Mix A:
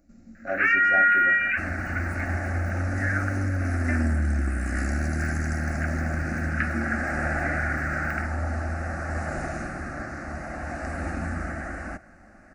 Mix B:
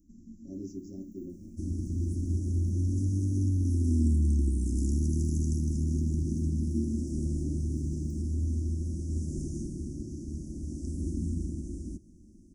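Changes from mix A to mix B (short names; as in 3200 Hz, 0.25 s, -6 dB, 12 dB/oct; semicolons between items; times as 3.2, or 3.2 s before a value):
first sound -11.5 dB; master: add Chebyshev band-stop 360–5700 Hz, order 4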